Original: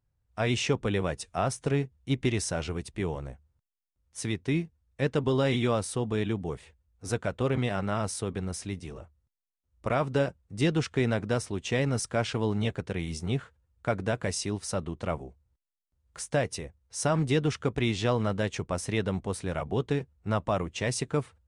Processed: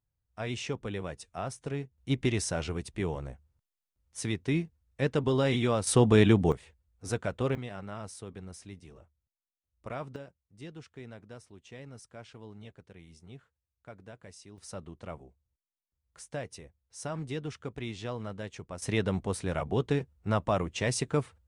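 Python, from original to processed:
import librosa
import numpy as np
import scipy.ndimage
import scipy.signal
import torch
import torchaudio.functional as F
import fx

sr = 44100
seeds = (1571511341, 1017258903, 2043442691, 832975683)

y = fx.gain(x, sr, db=fx.steps((0.0, -8.0), (1.98, -1.0), (5.87, 8.5), (6.52, -2.0), (7.55, -11.0), (10.16, -19.5), (14.58, -10.5), (18.82, 0.0)))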